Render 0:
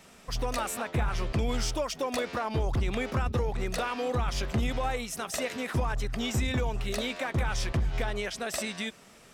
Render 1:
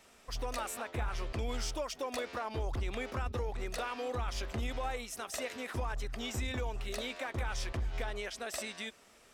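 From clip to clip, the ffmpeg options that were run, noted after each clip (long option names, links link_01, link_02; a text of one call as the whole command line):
ffmpeg -i in.wav -af "equalizer=frequency=160:width=1.9:gain=-12,volume=-6dB" out.wav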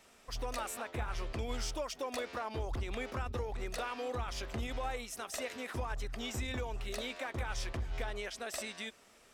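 ffmpeg -i in.wav -af "bandreject=frequency=50:width_type=h:width=6,bandreject=frequency=100:width_type=h:width=6,volume=-1dB" out.wav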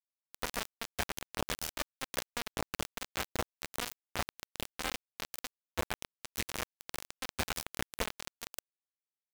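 ffmpeg -i in.wav -af "acrusher=bits=4:mix=0:aa=0.000001,volume=3dB" out.wav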